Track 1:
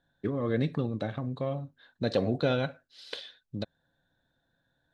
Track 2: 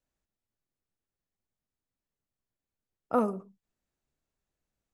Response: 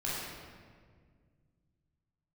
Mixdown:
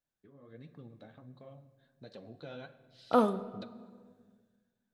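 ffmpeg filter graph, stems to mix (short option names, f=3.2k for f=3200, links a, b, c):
-filter_complex "[0:a]acompressor=threshold=-33dB:ratio=1.5,flanger=delay=4.3:depth=9.8:regen=35:speed=1.4:shape=triangular,volume=-13dB,afade=t=in:st=2.31:d=0.75:silence=0.354813,asplit=2[a][b];[b]volume=-18.5dB[c];[1:a]volume=-7dB,asplit=2[d][e];[e]volume=-18.5dB[f];[2:a]atrim=start_sample=2205[g];[c][f]amix=inputs=2:normalize=0[h];[h][g]afir=irnorm=-1:irlink=0[i];[a][d][i]amix=inputs=3:normalize=0,lowshelf=f=100:g=-6.5,dynaudnorm=f=130:g=9:m=8dB"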